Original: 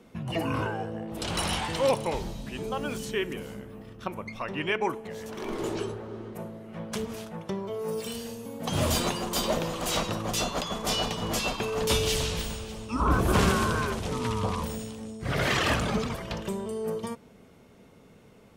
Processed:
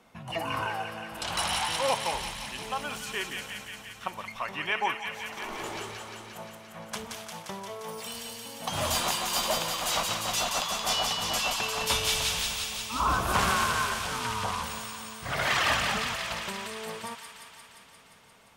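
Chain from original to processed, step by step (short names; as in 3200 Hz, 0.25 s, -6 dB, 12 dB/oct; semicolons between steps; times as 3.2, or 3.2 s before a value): resonant low shelf 570 Hz -8.5 dB, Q 1.5; on a send: thin delay 0.175 s, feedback 74%, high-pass 1700 Hz, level -3 dB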